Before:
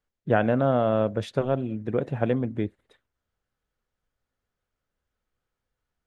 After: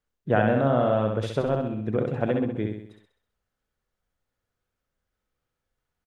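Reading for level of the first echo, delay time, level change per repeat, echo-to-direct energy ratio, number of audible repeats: -4.0 dB, 65 ms, -6.0 dB, -3.0 dB, 6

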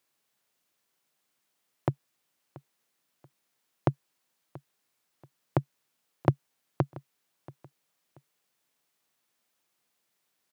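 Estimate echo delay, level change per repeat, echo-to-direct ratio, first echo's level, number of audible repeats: 682 ms, -10.0 dB, -20.0 dB, -20.5 dB, 2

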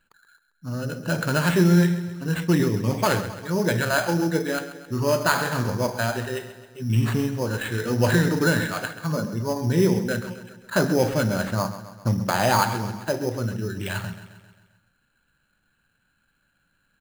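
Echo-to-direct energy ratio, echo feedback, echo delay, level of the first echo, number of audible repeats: -11.5 dB, 55%, 133 ms, -13.0 dB, 5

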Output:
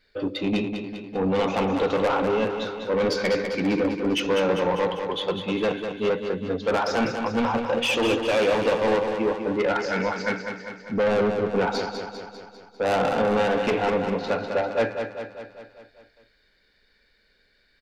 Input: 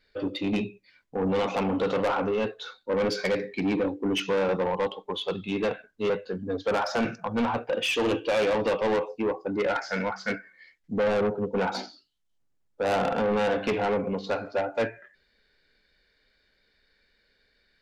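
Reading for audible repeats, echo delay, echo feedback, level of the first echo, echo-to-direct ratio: 6, 199 ms, 58%, -7.0 dB, -5.0 dB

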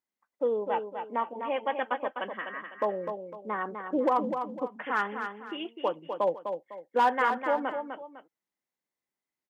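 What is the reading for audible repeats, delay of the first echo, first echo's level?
2, 252 ms, -7.0 dB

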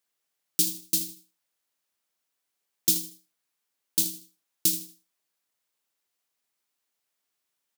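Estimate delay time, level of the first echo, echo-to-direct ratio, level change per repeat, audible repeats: 78 ms, -13.0 dB, -12.5 dB, -11.0 dB, 3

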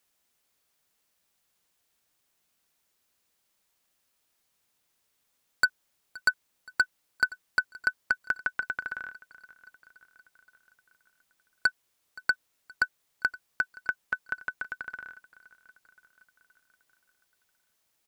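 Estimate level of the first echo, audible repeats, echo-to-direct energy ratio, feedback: -21.5 dB, 3, -19.5 dB, 59%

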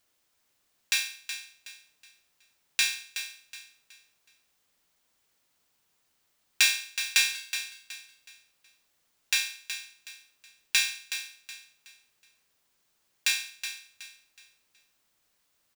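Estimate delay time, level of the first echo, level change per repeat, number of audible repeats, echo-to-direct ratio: 371 ms, -10.0 dB, -10.0 dB, 3, -9.5 dB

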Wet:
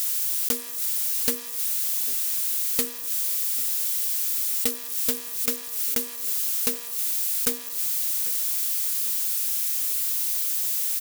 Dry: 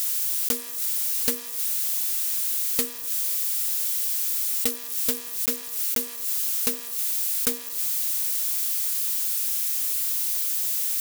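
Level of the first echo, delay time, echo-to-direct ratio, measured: -20.0 dB, 793 ms, -19.0 dB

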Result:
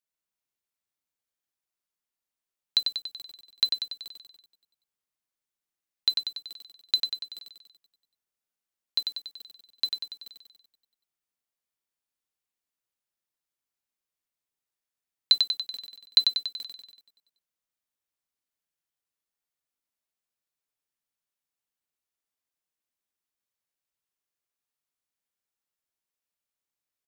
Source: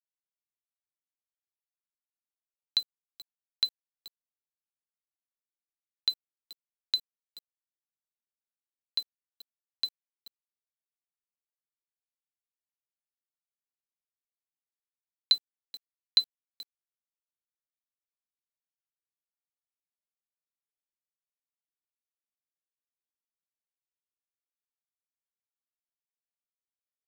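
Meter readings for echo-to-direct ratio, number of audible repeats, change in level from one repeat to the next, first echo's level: -3.0 dB, 7, -4.5 dB, -5.0 dB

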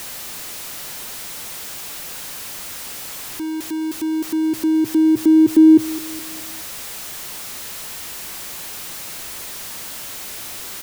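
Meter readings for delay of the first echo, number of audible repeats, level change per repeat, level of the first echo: 210 ms, 3, -6.5 dB, -18.0 dB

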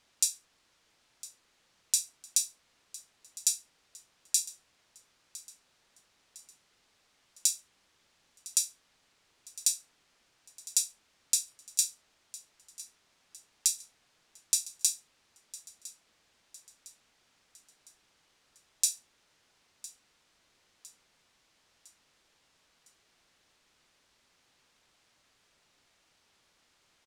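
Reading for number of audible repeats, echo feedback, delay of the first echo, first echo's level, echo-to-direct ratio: 3, 48%, 1007 ms, -18.5 dB, -17.5 dB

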